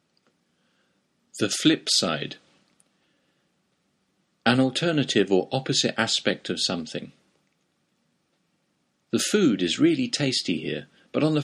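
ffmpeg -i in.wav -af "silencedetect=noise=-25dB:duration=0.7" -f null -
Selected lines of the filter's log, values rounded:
silence_start: 0.00
silence_end: 1.40 | silence_duration: 1.40
silence_start: 2.32
silence_end: 4.46 | silence_duration: 2.14
silence_start: 6.99
silence_end: 9.13 | silence_duration: 2.15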